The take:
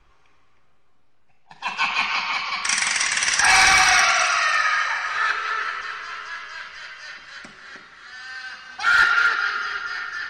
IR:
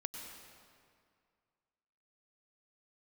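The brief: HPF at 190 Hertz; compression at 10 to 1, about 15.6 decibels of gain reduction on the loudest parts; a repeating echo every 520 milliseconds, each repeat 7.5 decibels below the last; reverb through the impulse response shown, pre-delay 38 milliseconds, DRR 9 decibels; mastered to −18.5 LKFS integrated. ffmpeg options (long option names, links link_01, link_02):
-filter_complex "[0:a]highpass=190,acompressor=threshold=-28dB:ratio=10,aecho=1:1:520|1040|1560|2080|2600:0.422|0.177|0.0744|0.0312|0.0131,asplit=2[link_01][link_02];[1:a]atrim=start_sample=2205,adelay=38[link_03];[link_02][link_03]afir=irnorm=-1:irlink=0,volume=-8dB[link_04];[link_01][link_04]amix=inputs=2:normalize=0,volume=11dB"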